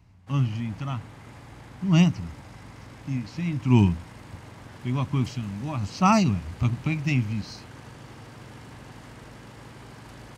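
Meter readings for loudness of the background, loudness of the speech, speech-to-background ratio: −45.5 LKFS, −25.5 LKFS, 20.0 dB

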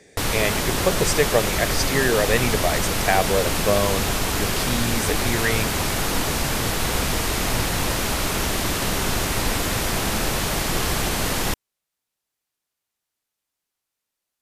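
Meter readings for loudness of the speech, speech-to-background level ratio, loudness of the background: −24.0 LKFS, −1.0 dB, −23.0 LKFS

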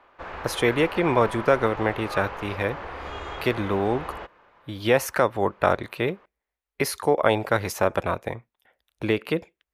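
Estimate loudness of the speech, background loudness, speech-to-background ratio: −25.0 LKFS, −35.5 LKFS, 10.5 dB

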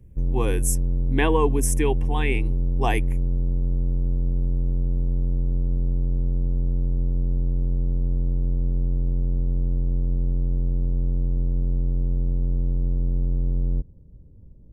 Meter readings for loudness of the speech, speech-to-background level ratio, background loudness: −26.5 LKFS, −0.5 dB, −26.0 LKFS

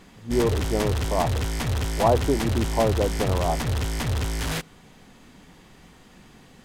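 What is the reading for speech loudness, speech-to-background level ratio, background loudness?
−26.0 LKFS, 1.5 dB, −27.5 LKFS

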